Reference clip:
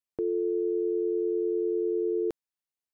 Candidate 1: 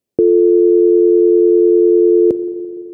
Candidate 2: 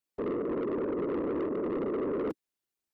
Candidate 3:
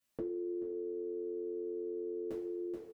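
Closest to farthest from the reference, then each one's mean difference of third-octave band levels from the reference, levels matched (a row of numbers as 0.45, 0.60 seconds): 1, 3, 2; 1.0, 4.0, 16.0 decibels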